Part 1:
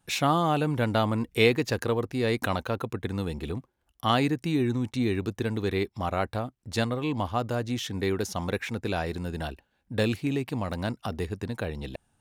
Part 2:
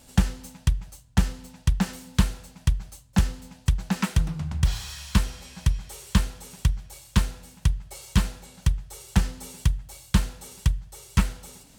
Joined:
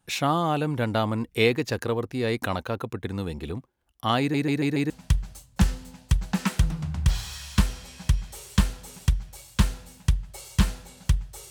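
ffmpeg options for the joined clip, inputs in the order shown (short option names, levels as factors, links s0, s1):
-filter_complex "[0:a]apad=whole_dur=11.5,atrim=end=11.5,asplit=5[s0][s1][s2][s3][s4];[s0]atrim=end=4.342[s5];[s1]atrim=start=4.198:end=4.342[s6];[s2]atrim=start=4.198:end=4.342[s7];[s3]atrim=start=4.198:end=4.342[s8];[s4]atrim=start=4.198:end=4.342[s9];[1:a]atrim=start=2.468:end=9.07[s10];[s5][s6]acrossfade=d=0.004:c1=hsin:c2=hsin[s11];[s11][s7]acrossfade=d=0.004:c1=hsin:c2=hsin[s12];[s12][s8]acrossfade=d=0.004:c1=hsin:c2=hsin[s13];[s13][s9]acrossfade=d=0.004:c1=hsin:c2=hsin[s14];[s14][s10]acrossfade=d=0.004:c1=hsin:c2=hsin"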